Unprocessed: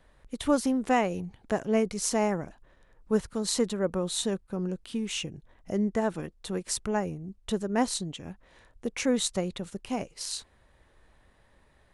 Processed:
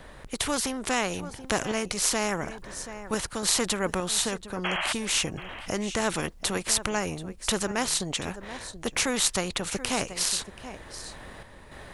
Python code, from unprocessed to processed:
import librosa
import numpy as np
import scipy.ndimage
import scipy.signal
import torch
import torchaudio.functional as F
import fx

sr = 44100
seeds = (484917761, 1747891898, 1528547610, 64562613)

y = fx.tremolo_random(x, sr, seeds[0], hz=3.5, depth_pct=55)
y = fx.spec_paint(y, sr, seeds[1], shape='noise', start_s=4.64, length_s=0.29, low_hz=560.0, high_hz=3300.0, level_db=-39.0)
y = y + 10.0 ** (-23.5 / 20.0) * np.pad(y, (int(731 * sr / 1000.0), 0))[:len(y)]
y = fx.spectral_comp(y, sr, ratio=2.0)
y = F.gain(torch.from_numpy(y), 8.5).numpy()